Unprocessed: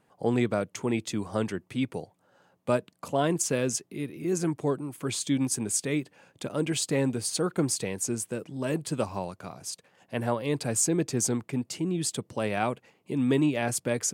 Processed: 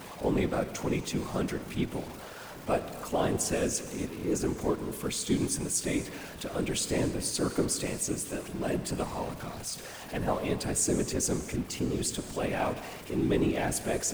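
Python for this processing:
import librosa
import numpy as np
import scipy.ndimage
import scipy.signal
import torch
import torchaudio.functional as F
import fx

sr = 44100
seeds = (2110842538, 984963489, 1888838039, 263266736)

y = x + 0.5 * 10.0 ** (-35.0 / 20.0) * np.sign(x)
y = fx.whisperise(y, sr, seeds[0])
y = fx.rev_gated(y, sr, seeds[1], gate_ms=310, shape='flat', drr_db=11.0)
y = F.gain(torch.from_numpy(y), -3.5).numpy()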